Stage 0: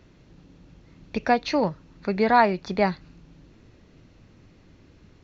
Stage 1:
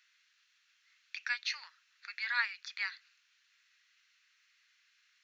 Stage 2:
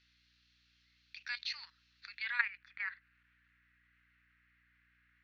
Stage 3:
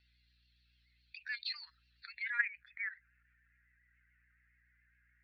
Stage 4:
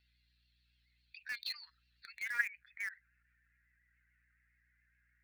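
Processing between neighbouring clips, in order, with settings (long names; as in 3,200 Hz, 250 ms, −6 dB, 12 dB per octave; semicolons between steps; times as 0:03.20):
Butterworth high-pass 1,500 Hz 36 dB per octave; level −3.5 dB
low-pass filter sweep 4,400 Hz → 1,800 Hz, 0:02.08–0:02.58; output level in coarse steps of 12 dB; mains hum 60 Hz, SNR 32 dB; level −1.5 dB
expanding power law on the bin magnitudes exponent 1.9; pitch vibrato 7.1 Hz 48 cents
amplitude modulation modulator 100 Hz, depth 10%; in parallel at −12 dB: bit reduction 6 bits; on the sum: level −2 dB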